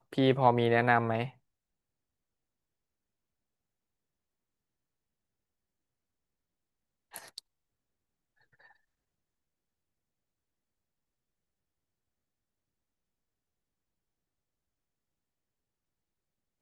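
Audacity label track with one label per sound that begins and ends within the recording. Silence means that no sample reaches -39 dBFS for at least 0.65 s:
7.140000	7.380000	sound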